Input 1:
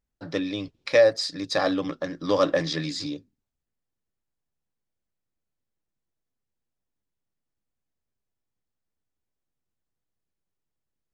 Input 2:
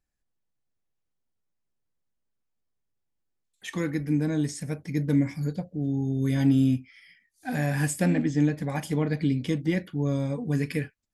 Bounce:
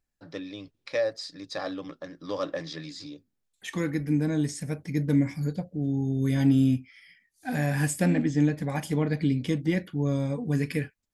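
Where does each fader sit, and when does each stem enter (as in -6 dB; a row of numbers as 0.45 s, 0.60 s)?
-9.5 dB, 0.0 dB; 0.00 s, 0.00 s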